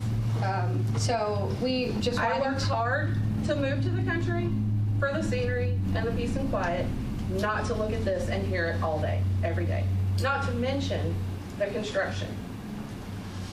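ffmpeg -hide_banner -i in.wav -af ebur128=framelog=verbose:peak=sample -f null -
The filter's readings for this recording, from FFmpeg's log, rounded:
Integrated loudness:
  I:         -28.5 LUFS
  Threshold: -38.5 LUFS
Loudness range:
  LRA:         2.0 LU
  Threshold: -48.3 LUFS
  LRA low:   -29.3 LUFS
  LRA high:  -27.4 LUFS
Sample peak:
  Peak:      -14.3 dBFS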